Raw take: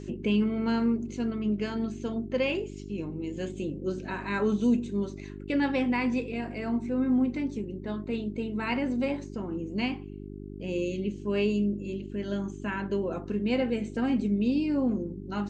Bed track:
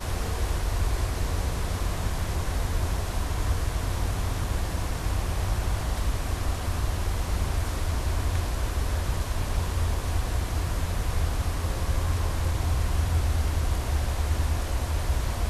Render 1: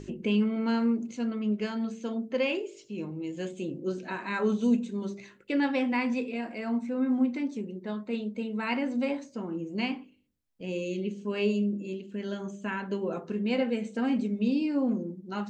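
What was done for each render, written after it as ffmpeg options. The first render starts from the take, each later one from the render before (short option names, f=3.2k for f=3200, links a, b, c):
-af "bandreject=f=50:t=h:w=4,bandreject=f=100:t=h:w=4,bandreject=f=150:t=h:w=4,bandreject=f=200:t=h:w=4,bandreject=f=250:t=h:w=4,bandreject=f=300:t=h:w=4,bandreject=f=350:t=h:w=4,bandreject=f=400:t=h:w=4,bandreject=f=450:t=h:w=4,bandreject=f=500:t=h:w=4,bandreject=f=550:t=h:w=4,bandreject=f=600:t=h:w=4"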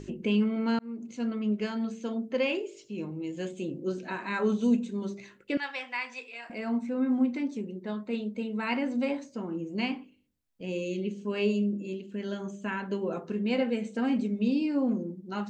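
-filter_complex "[0:a]asettb=1/sr,asplit=3[a][b][c];[a]atrim=end=5.574[d];[b]atrim=start=5.57:end=6.5,asetpts=PTS-STARTPTS,afade=t=in:d=0.004:c=qsin,afade=t=out:st=0.926:d=0.004:c=qsin,highpass=1.1k[e];[c]atrim=start=6.496[f];[d][e]acrossfade=d=0.004:c1=hsin:c2=qsin[g];[g][f]acrossfade=d=0.004:c1=qsin:c2=hsin,asplit=2[h][i];[h]atrim=end=0.79,asetpts=PTS-STARTPTS,afade=t=out:st=0.786:d=0.004:c=hsin[j];[i]atrim=start=0.79,asetpts=PTS-STARTPTS,afade=t=in:d=0.47[k];[j][k]concat=n=2:v=0:a=1"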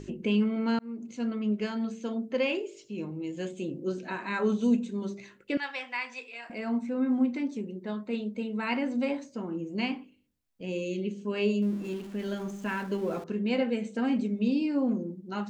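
-filter_complex "[0:a]asettb=1/sr,asplit=3[a][b][c];[a]atrim=end=11.624[d];[b]atrim=start=11.62:end=13.24,asetpts=PTS-STARTPTS,afade=t=in:d=0.004:c=qsin,afade=t=out:st=1.616:d=0.004:c=qsin,aeval=exprs='val(0)+0.5*0.00668*sgn(val(0))':c=same[e];[c]atrim=start=13.236[f];[d][e]acrossfade=d=0.004:c1=hsin:c2=qsin[g];[g][f]acrossfade=d=0.004:c1=qsin:c2=hsin"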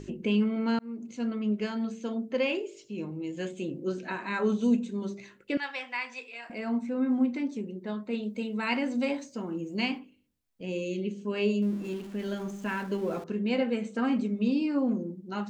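-filter_complex "[0:a]asettb=1/sr,asplit=3[a][b][c];[a]atrim=end=3.374[d];[b]atrim=start=3.37:end=4.12,asetpts=PTS-STARTPTS,afade=t=in:d=0.004:c=qsin,afade=t=out:st=0.746:d=0.004:c=qsin,equalizer=f=1.8k:t=o:w=1.4:g=3.5[e];[c]atrim=start=4.116[f];[d][e]acrossfade=d=0.004:c1=hsin:c2=qsin[g];[g][f]acrossfade=d=0.004:c1=qsin:c2=hsin,asettb=1/sr,asplit=3[h][i][j];[h]atrim=end=8.234[k];[i]atrim=start=8.23:end=9.99,asetpts=PTS-STARTPTS,afade=t=in:d=0.004:c=qsin,afade=t=out:st=1.756:d=0.004:c=qsin,highshelf=f=3.3k:g=7.5[l];[j]atrim=start=9.986[m];[k][l]acrossfade=d=0.004:c1=hsin:c2=qsin[n];[n][m]acrossfade=d=0.004:c1=qsin:c2=hsin,asettb=1/sr,asplit=3[o][p][q];[o]atrim=end=13.714[r];[p]atrim=start=13.71:end=14.79,asetpts=PTS-STARTPTS,afade=t=in:d=0.004:c=qsin,afade=t=out:st=1.076:d=0.004:c=qsin,equalizer=f=1.2k:t=o:w=0.48:g=9[s];[q]atrim=start=14.786[t];[r][s]acrossfade=d=0.004:c1=hsin:c2=qsin[u];[u][t]acrossfade=d=0.004:c1=qsin:c2=hsin"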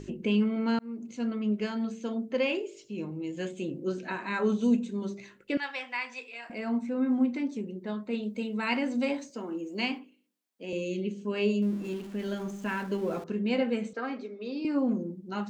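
-filter_complex "[0:a]asettb=1/sr,asplit=3[a][b][c];[a]atrim=end=9.304[d];[b]atrim=start=9.3:end=10.73,asetpts=PTS-STARTPTS,afade=t=in:d=0.004:c=qsin,afade=t=out:st=1.426:d=0.004:c=qsin,highpass=f=230:w=0.5412,highpass=f=230:w=1.3066[e];[c]atrim=start=10.726[f];[d][e]acrossfade=d=0.004:c1=hsin:c2=qsin[g];[g][f]acrossfade=d=0.004:c1=qsin:c2=hsin,asettb=1/sr,asplit=3[h][i][j];[h]atrim=end=13.934[k];[i]atrim=start=13.93:end=14.65,asetpts=PTS-STARTPTS,afade=t=in:d=0.004:c=qsin,afade=t=out:st=0.716:d=0.004:c=qsin,highpass=f=350:w=0.5412,highpass=f=350:w=1.3066,equalizer=f=600:t=q:w=4:g=-3,equalizer=f=940:t=q:w=4:g=-6,equalizer=f=2.9k:t=q:w=4:g=-9,lowpass=f=5.2k:w=0.5412,lowpass=f=5.2k:w=1.3066[l];[j]atrim=start=14.646[m];[k][l]acrossfade=d=0.004:c1=hsin:c2=qsin[n];[n][m]acrossfade=d=0.004:c1=qsin:c2=hsin"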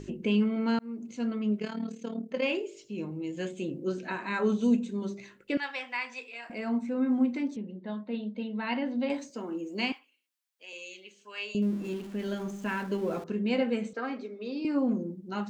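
-filter_complex "[0:a]asettb=1/sr,asplit=3[a][b][c];[a]atrim=end=1.594[d];[b]atrim=start=1.59:end=2.43,asetpts=PTS-STARTPTS,afade=t=in:d=0.004:c=qsin,afade=t=out:st=0.836:d=0.004:c=qsin,tremolo=f=37:d=0.75[e];[c]atrim=start=2.426[f];[d][e]acrossfade=d=0.004:c1=hsin:c2=qsin[g];[g][f]acrossfade=d=0.004:c1=qsin:c2=hsin,asettb=1/sr,asplit=3[h][i][j];[h]atrim=end=7.564[k];[i]atrim=start=7.56:end=9.1,asetpts=PTS-STARTPTS,afade=t=in:d=0.004:c=qsin,afade=t=out:st=1.536:d=0.004:c=qsin,highpass=150,equalizer=f=390:t=q:w=4:g=-9,equalizer=f=1.3k:t=q:w=4:g=-7,equalizer=f=2.4k:t=q:w=4:g=-9,lowpass=f=3.8k:w=0.5412,lowpass=f=3.8k:w=1.3066[l];[j]atrim=start=9.096[m];[k][l]acrossfade=d=0.004:c1=hsin:c2=qsin[n];[n][m]acrossfade=d=0.004:c1=qsin:c2=hsin,asettb=1/sr,asplit=3[o][p][q];[o]atrim=end=9.924[r];[p]atrim=start=9.92:end=11.55,asetpts=PTS-STARTPTS,afade=t=in:d=0.004:c=qsin,afade=t=out:st=1.626:d=0.004:c=qsin,highpass=1.2k[s];[q]atrim=start=11.546[t];[r][s]acrossfade=d=0.004:c1=hsin:c2=qsin[u];[u][t]acrossfade=d=0.004:c1=qsin:c2=hsin"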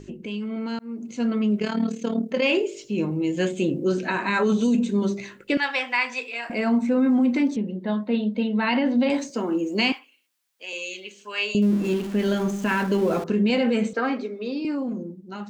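-filter_complex "[0:a]acrossover=split=2900[a][b];[a]alimiter=level_in=1dB:limit=-24dB:level=0:latency=1:release=28,volume=-1dB[c];[c][b]amix=inputs=2:normalize=0,dynaudnorm=f=110:g=21:m=11dB"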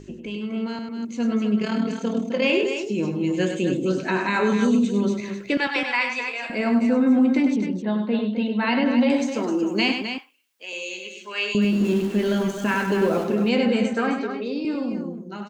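-af "aecho=1:1:99.13|259.5:0.447|0.398"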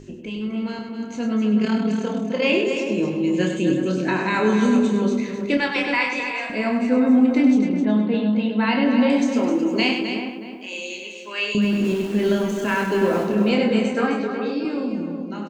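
-filter_complex "[0:a]asplit=2[a][b];[b]adelay=28,volume=-6.5dB[c];[a][c]amix=inputs=2:normalize=0,asplit=2[d][e];[e]adelay=369,lowpass=f=1.2k:p=1,volume=-6dB,asplit=2[f][g];[g]adelay=369,lowpass=f=1.2k:p=1,volume=0.29,asplit=2[h][i];[i]adelay=369,lowpass=f=1.2k:p=1,volume=0.29,asplit=2[j][k];[k]adelay=369,lowpass=f=1.2k:p=1,volume=0.29[l];[d][f][h][j][l]amix=inputs=5:normalize=0"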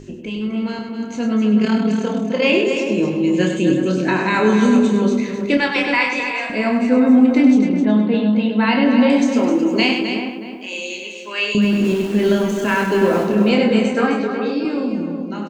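-af "volume=4dB,alimiter=limit=-3dB:level=0:latency=1"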